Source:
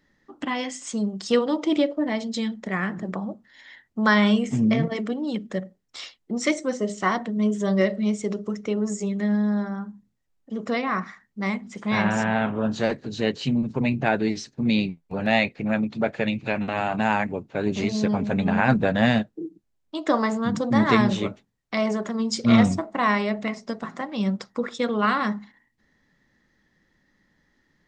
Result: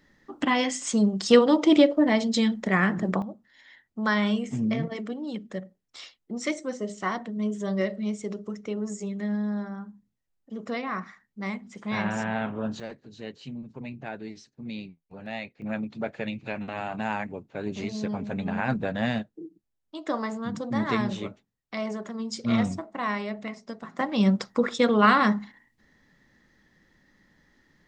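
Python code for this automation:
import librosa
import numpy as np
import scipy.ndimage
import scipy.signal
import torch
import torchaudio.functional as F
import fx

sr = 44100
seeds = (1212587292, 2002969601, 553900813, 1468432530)

y = fx.gain(x, sr, db=fx.steps((0.0, 4.0), (3.22, -6.0), (12.8, -15.0), (15.62, -7.5), (23.99, 3.5)))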